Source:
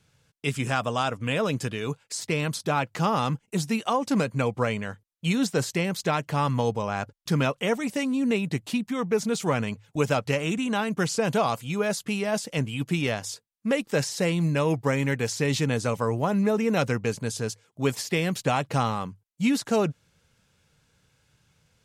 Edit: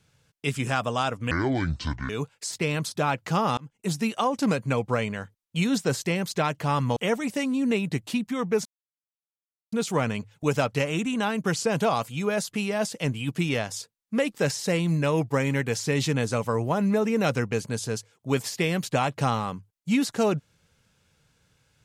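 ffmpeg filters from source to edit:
-filter_complex "[0:a]asplit=6[a][b][c][d][e][f];[a]atrim=end=1.314[g];[b]atrim=start=1.31:end=1.78,asetpts=PTS-STARTPTS,asetrate=26460,aresample=44100[h];[c]atrim=start=1.776:end=3.26,asetpts=PTS-STARTPTS,afade=t=out:st=1.48:d=0.004:c=hsin[i];[d]atrim=start=3.26:end=6.652,asetpts=PTS-STARTPTS,afade=t=in:d=0.35[j];[e]atrim=start=7.558:end=9.25,asetpts=PTS-STARTPTS,afade=t=out:st=1.688:d=0.004:c=hsin,apad=pad_dur=1.07[k];[f]atrim=start=9.25,asetpts=PTS-STARTPTS,afade=t=in:d=0.004:c=hsin[l];[g][h]acrossfade=d=0.004:c1=hsin:c2=hsin[m];[i][j]concat=n=2:v=0:a=1[n];[m][n]acrossfade=d=0.004:c1=hsin:c2=hsin[o];[k][l]concat=n=2:v=0:a=1[p];[o][p]acrossfade=d=0.004:c1=hsin:c2=hsin"

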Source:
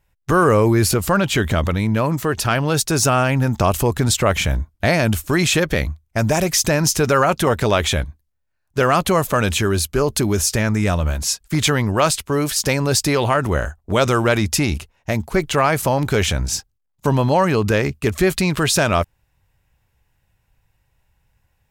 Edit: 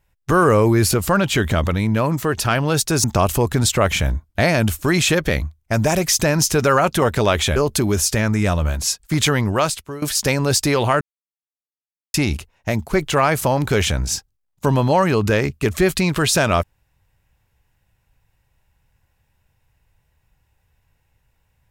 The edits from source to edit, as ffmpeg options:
-filter_complex "[0:a]asplit=6[a][b][c][d][e][f];[a]atrim=end=3.042[g];[b]atrim=start=3.488:end=8.012[h];[c]atrim=start=9.968:end=12.43,asetpts=PTS-STARTPTS,afade=t=out:st=1.922:d=0.54:silence=0.141254[i];[d]atrim=start=12.43:end=13.42,asetpts=PTS-STARTPTS,afade=t=in:d=0.004:c=hsin:silence=0.141254,afade=t=out:st=0.986:d=0.004:c=hsin[j];[e]atrim=start=13.42:end=14.55,asetpts=PTS-STARTPTS,volume=0[k];[f]atrim=start=14.55,asetpts=PTS-STARTPTS,afade=t=in:d=0.004:c=hsin[l];[g][h]acrossfade=d=0.004:c1=hsin:c2=hsin[m];[i][j][k][l]concat=n=4:v=0:a=1[n];[m][n]acrossfade=d=0.004:c1=hsin:c2=hsin"

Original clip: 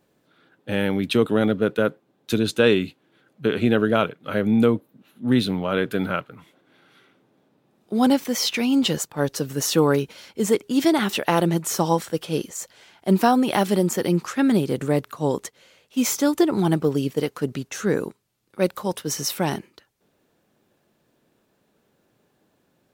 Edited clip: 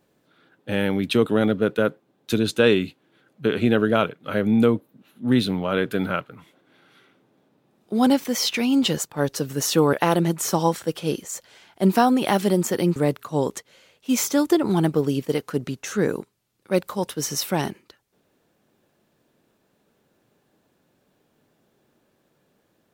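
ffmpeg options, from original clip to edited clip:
-filter_complex "[0:a]asplit=3[a][b][c];[a]atrim=end=9.932[d];[b]atrim=start=11.188:end=14.222[e];[c]atrim=start=14.838[f];[d][e]acrossfade=d=0.004:c1=hsin:c2=hsin[g];[g][f]acrossfade=d=0.004:c1=hsin:c2=hsin"

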